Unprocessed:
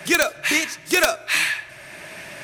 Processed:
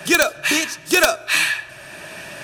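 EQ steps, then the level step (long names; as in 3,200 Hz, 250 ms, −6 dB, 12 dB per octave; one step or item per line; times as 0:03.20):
Butterworth band-reject 2,100 Hz, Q 7.4
+3.0 dB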